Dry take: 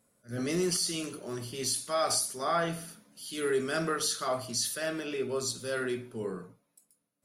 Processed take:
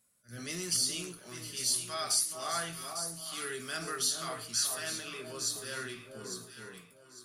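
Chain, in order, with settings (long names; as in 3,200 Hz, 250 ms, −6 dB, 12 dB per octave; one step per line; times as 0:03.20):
guitar amp tone stack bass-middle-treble 5-5-5
delay that swaps between a low-pass and a high-pass 426 ms, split 1,100 Hz, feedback 54%, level −3.5 dB
every ending faded ahead of time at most 140 dB per second
level +7 dB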